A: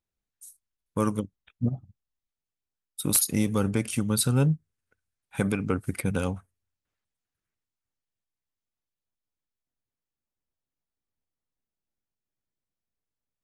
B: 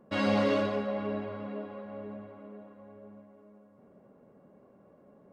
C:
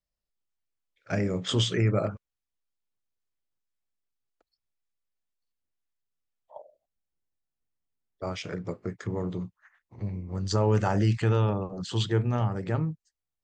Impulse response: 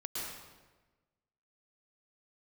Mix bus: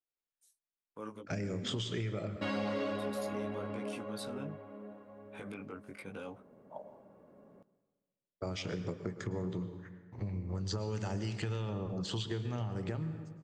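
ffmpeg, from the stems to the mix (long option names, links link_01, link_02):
-filter_complex "[0:a]acrossover=split=270 4900:gain=0.158 1 0.158[link_01][link_02][link_03];[link_01][link_02][link_03]amix=inputs=3:normalize=0,alimiter=level_in=2.5dB:limit=-24dB:level=0:latency=1:release=65,volume=-2.5dB,flanger=delay=17:depth=4.4:speed=0.77,volume=-5dB[link_04];[1:a]adelay=2300,volume=-1.5dB,asplit=2[link_05][link_06];[link_06]volume=-17dB[link_07];[2:a]agate=range=-33dB:threshold=-56dB:ratio=3:detection=peak,acrossover=split=550|2600|5400[link_08][link_09][link_10][link_11];[link_08]acompressor=threshold=-31dB:ratio=4[link_12];[link_09]acompressor=threshold=-45dB:ratio=4[link_13];[link_10]acompressor=threshold=-38dB:ratio=4[link_14];[link_11]acompressor=threshold=-50dB:ratio=4[link_15];[link_12][link_13][link_14][link_15]amix=inputs=4:normalize=0,adelay=200,volume=-1dB,asplit=2[link_16][link_17];[link_17]volume=-10.5dB[link_18];[3:a]atrim=start_sample=2205[link_19];[link_07][link_18]amix=inputs=2:normalize=0[link_20];[link_20][link_19]afir=irnorm=-1:irlink=0[link_21];[link_04][link_05][link_16][link_21]amix=inputs=4:normalize=0,acompressor=threshold=-34dB:ratio=3"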